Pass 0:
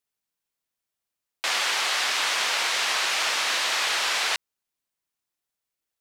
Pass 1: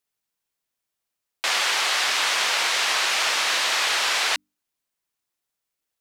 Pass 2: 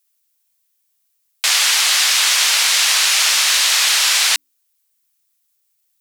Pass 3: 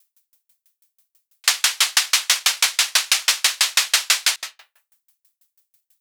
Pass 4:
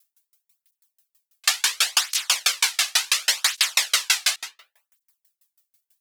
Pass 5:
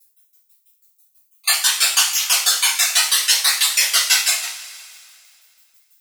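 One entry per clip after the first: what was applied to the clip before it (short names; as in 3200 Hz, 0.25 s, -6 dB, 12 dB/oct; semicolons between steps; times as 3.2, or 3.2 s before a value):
notches 50/100/150/200/250/300 Hz; gain +2.5 dB
tilt +4.5 dB/oct
reverb RT60 0.75 s, pre-delay 75 ms, DRR 20 dB; maximiser +12 dB; dB-ramp tremolo decaying 6.1 Hz, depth 39 dB
tape flanging out of phase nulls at 0.7 Hz, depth 2.2 ms
random spectral dropouts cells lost 26%; high shelf 7700 Hz +9 dB; two-slope reverb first 0.41 s, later 2.4 s, from -18 dB, DRR -9 dB; gain -5 dB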